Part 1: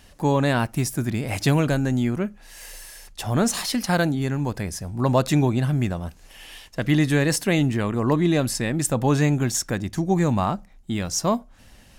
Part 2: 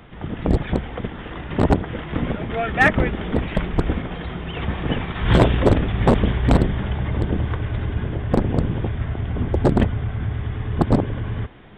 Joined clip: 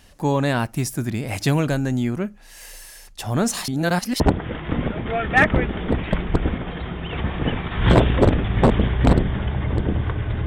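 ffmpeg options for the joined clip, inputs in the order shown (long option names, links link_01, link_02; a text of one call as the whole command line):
ffmpeg -i cue0.wav -i cue1.wav -filter_complex "[0:a]apad=whole_dur=10.46,atrim=end=10.46,asplit=2[link_01][link_02];[link_01]atrim=end=3.682[link_03];[link_02]atrim=start=3.678:end=4.202,asetpts=PTS-STARTPTS,areverse[link_04];[1:a]atrim=start=1.638:end=7.9[link_05];[link_03][link_04]acrossfade=duration=0.004:curve1=hsin:curve2=hsin[link_06];[link_06][link_05]acrossfade=duration=0.004:curve1=hsin:curve2=hsin" out.wav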